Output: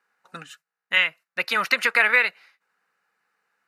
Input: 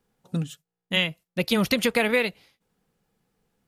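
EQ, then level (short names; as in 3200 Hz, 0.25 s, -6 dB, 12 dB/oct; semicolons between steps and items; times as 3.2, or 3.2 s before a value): resonant high-pass 1500 Hz, resonance Q 2.4; tilt -4 dB/oct; notch 3300 Hz, Q 5.7; +7.5 dB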